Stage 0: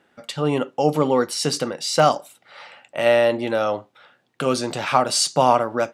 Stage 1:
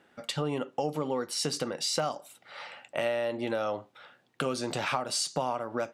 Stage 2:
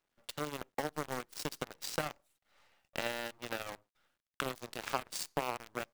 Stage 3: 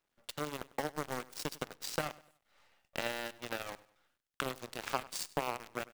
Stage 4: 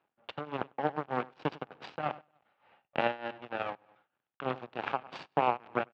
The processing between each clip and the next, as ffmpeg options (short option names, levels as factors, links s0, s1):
-af "acompressor=threshold=0.0501:ratio=6,volume=0.841"
-af "acrusher=bits=7:dc=4:mix=0:aa=0.000001,aeval=exprs='0.224*(cos(1*acos(clip(val(0)/0.224,-1,1)))-cos(1*PI/2))+0.00316*(cos(3*acos(clip(val(0)/0.224,-1,1)))-cos(3*PI/2))+0.0355*(cos(7*acos(clip(val(0)/0.224,-1,1)))-cos(7*PI/2))':c=same,volume=0.708"
-af "aecho=1:1:99|198|297:0.1|0.038|0.0144"
-af "tremolo=f=3.3:d=0.85,highpass=130,equalizer=f=130:t=q:w=4:g=3,equalizer=f=800:t=q:w=4:g=6,equalizer=f=2000:t=q:w=4:g=-6,lowpass=f=2700:w=0.5412,lowpass=f=2700:w=1.3066,volume=2.82"